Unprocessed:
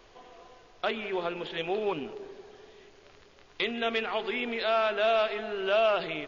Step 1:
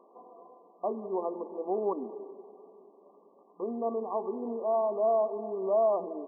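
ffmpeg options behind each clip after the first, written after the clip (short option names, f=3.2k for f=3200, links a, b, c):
-af "afftfilt=real='re*between(b*sr/4096,180,1200)':imag='im*between(b*sr/4096,180,1200)':win_size=4096:overlap=0.75"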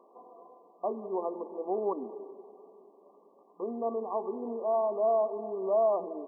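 -af "lowshelf=f=130:g=-8"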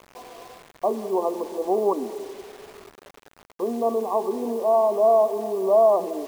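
-af "acrusher=bits=8:mix=0:aa=0.000001,volume=9dB"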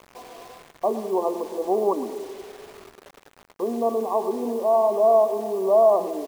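-af "aecho=1:1:111:0.2"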